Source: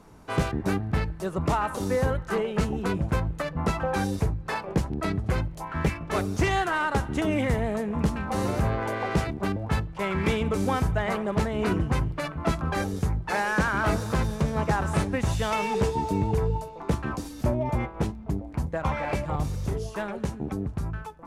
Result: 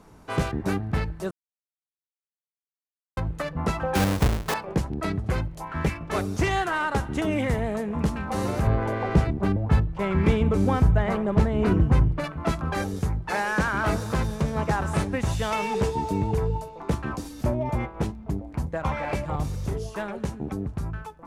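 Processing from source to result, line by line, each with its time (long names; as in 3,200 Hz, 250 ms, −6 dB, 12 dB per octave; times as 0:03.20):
0:01.31–0:03.17: silence
0:03.95–0:04.54: each half-wave held at its own peak
0:08.67–0:12.24: spectral tilt −2 dB per octave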